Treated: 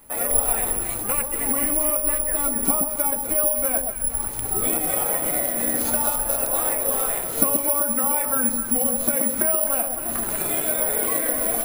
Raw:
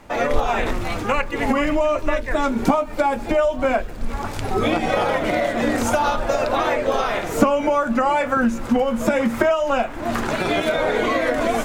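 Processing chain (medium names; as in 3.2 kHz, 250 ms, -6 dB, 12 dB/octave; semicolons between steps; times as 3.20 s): echo whose repeats swap between lows and highs 128 ms, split 920 Hz, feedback 52%, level -4 dB; careless resampling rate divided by 4×, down none, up zero stuff; trim -10 dB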